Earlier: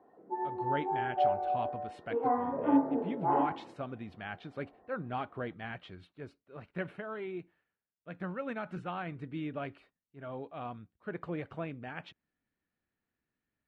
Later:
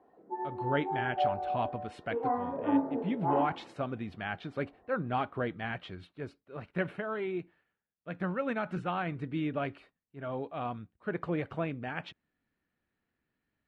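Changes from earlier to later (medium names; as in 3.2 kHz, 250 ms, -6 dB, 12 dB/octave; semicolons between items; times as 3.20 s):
speech +5.0 dB; background: send -7.0 dB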